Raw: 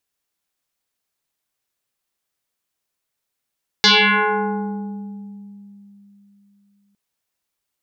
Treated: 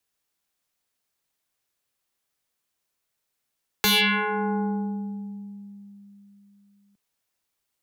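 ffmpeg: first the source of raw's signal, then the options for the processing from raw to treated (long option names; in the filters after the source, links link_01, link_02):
-f lavfi -i "aevalsrc='0.376*pow(10,-3*t/3.57)*sin(2*PI*201*t+8.2*pow(10,-3*t/2.35)*sin(2*PI*3.13*201*t))':duration=3.11:sample_rate=44100"
-filter_complex "[0:a]acrossover=split=200|3000[link_01][link_02][link_03];[link_02]acompressor=threshold=-25dB:ratio=5[link_04];[link_01][link_04][link_03]amix=inputs=3:normalize=0,acrossover=split=120|960|2200[link_05][link_06][link_07][link_08];[link_08]aeval=exprs='0.126*(abs(mod(val(0)/0.126+3,4)-2)-1)':channel_layout=same[link_09];[link_05][link_06][link_07][link_09]amix=inputs=4:normalize=0"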